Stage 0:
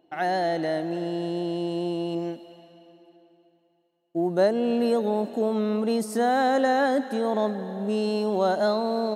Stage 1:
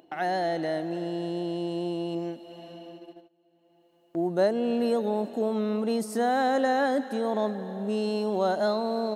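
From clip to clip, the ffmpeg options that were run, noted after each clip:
-af "agate=range=-28dB:threshold=-53dB:ratio=16:detection=peak,acompressor=mode=upward:threshold=-30dB:ratio=2.5,volume=-2.5dB"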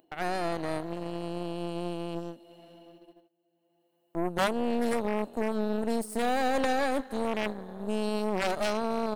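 -af "aeval=exprs='0.224*(cos(1*acos(clip(val(0)/0.224,-1,1)))-cos(1*PI/2))+0.0631*(cos(3*acos(clip(val(0)/0.224,-1,1)))-cos(3*PI/2))+0.0178*(cos(4*acos(clip(val(0)/0.224,-1,1)))-cos(4*PI/2))':c=same,aeval=exprs='0.266*sin(PI/2*3.55*val(0)/0.266)':c=same,aexciter=amount=1.3:drive=9.3:freq=8.3k,volume=-7.5dB"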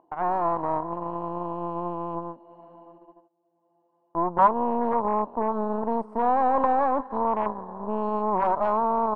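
-af "lowpass=f=1k:t=q:w=9"

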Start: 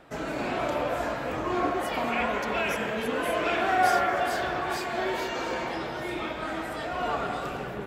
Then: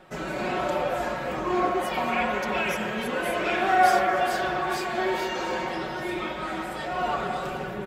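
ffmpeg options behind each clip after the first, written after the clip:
-af "aecho=1:1:5.4:0.65"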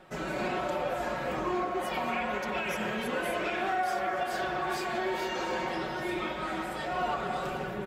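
-af "alimiter=limit=-19dB:level=0:latency=1:release=266,volume=-2.5dB"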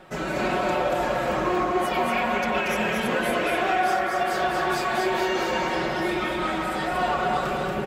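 -af "aecho=1:1:233:0.668,volume=6dB"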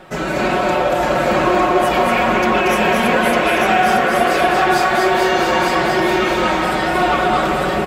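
-af "aecho=1:1:903:0.708,volume=7.5dB"

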